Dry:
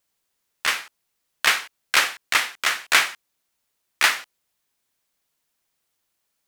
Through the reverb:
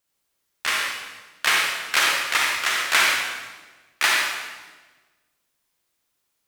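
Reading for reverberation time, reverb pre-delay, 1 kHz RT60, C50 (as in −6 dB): 1.3 s, 35 ms, 1.2 s, −1.0 dB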